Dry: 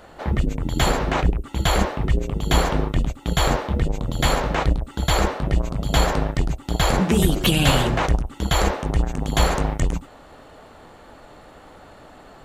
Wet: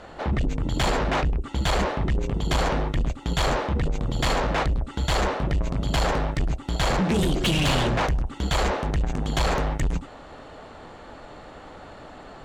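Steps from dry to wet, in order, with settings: LPF 6800 Hz 12 dB/oct; soft clip -21 dBFS, distortion -8 dB; gain +2.5 dB

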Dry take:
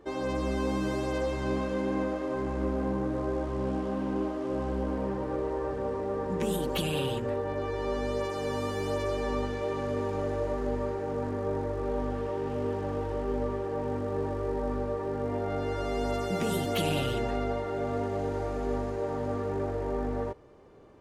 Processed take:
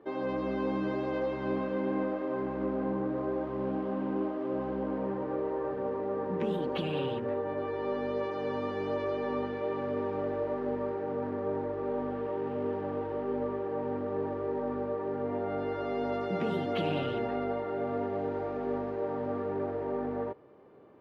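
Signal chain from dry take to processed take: HPF 160 Hz 12 dB/oct; air absorption 330 m

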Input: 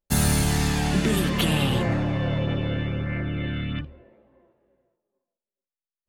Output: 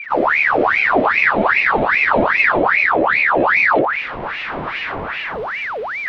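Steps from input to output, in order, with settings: zero-crossing step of -28 dBFS; tone controls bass +10 dB, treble -11 dB; AGC gain up to 12.5 dB; air absorption 390 m; spectral freeze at 1.11, 1.47 s; ring modulator with a swept carrier 1400 Hz, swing 70%, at 2.5 Hz; gain -1.5 dB

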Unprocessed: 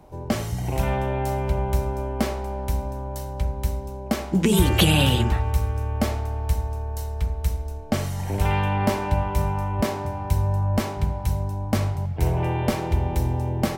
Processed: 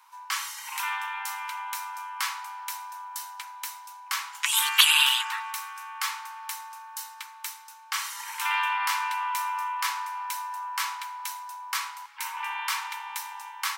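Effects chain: steep high-pass 920 Hz 96 dB/oct; gain +4.5 dB

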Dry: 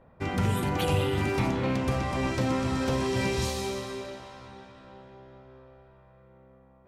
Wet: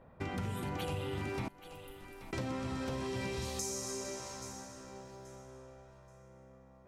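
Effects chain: 1.48–2.33 inverse Chebyshev band-stop 170–2700 Hz, stop band 80 dB; 3.59–5.26 resonant high shelf 4700 Hz +11 dB, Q 3; on a send: thinning echo 0.829 s, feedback 25%, high-pass 290 Hz, level -20 dB; on the sum: compressor 4:1, threshold -35 dBFS, peak gain reduction 12 dB; gain -1.5 dB

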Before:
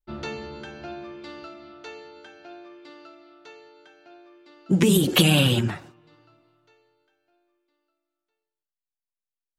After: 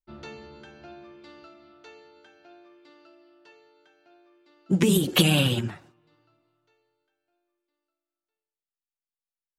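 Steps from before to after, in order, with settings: 3.06–3.52 ripple EQ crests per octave 1.3, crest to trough 9 dB; upward expander 1.5:1, over -29 dBFS; gain -1 dB

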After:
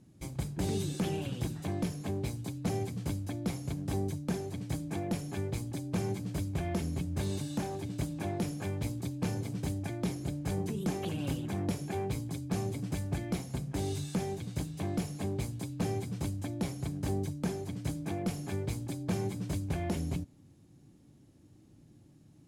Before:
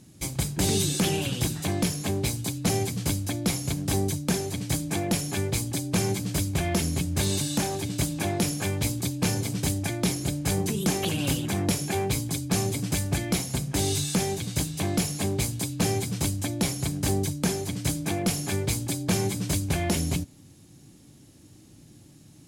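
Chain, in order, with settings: high shelf 2100 Hz -11.5 dB; gain -6.5 dB

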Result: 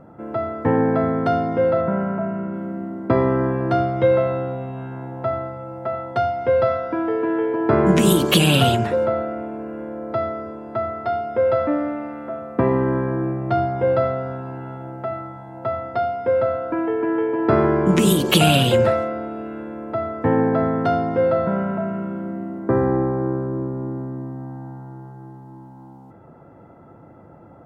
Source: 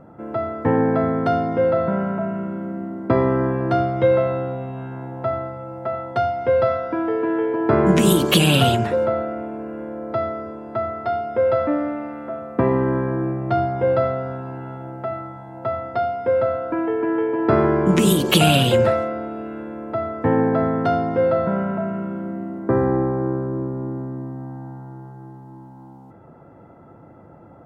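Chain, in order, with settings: 1.81–2.54 LPF 2800 Hz 12 dB/oct

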